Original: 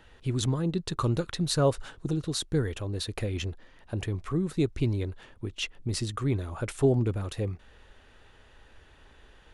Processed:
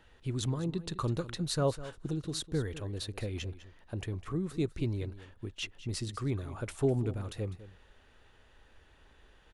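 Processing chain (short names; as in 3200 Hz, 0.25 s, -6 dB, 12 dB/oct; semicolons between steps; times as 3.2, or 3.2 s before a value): echo 0.202 s -15.5 dB; gain -5.5 dB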